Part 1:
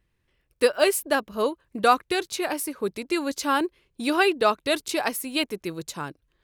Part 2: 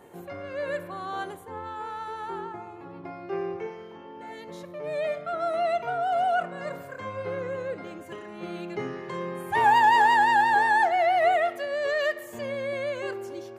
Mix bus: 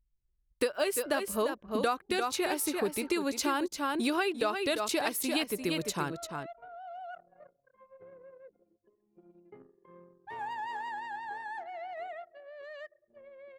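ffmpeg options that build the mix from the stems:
-filter_complex "[0:a]volume=1.19,asplit=2[s0][s1];[s1]volume=0.398[s2];[1:a]adelay=750,volume=0.112,asplit=2[s3][s4];[s4]volume=0.112[s5];[s2][s5]amix=inputs=2:normalize=0,aecho=0:1:345:1[s6];[s0][s3][s6]amix=inputs=3:normalize=0,anlmdn=0.01,acompressor=threshold=0.0447:ratio=6"

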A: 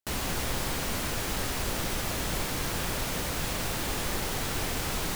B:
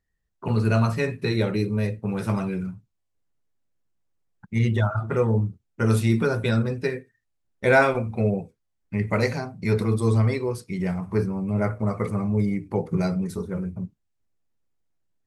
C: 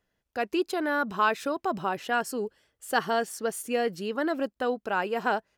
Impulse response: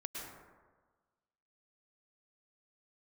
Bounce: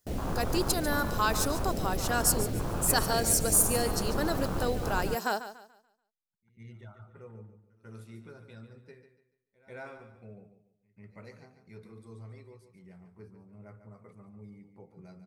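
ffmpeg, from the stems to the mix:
-filter_complex "[0:a]afwtdn=0.0282,volume=1.19[s0];[1:a]adelay=1900,volume=0.168,asplit=2[s1][s2];[s2]volume=0.266[s3];[2:a]aexciter=amount=6.5:drive=5.8:freq=4100,volume=0.631,asplit=3[s4][s5][s6];[s5]volume=0.237[s7];[s6]apad=whole_len=757073[s8];[s1][s8]sidechaingate=range=0.0224:threshold=0.00282:ratio=16:detection=peak[s9];[s3][s7]amix=inputs=2:normalize=0,aecho=0:1:144|288|432|576|720:1|0.32|0.102|0.0328|0.0105[s10];[s0][s9][s4][s10]amix=inputs=4:normalize=0"

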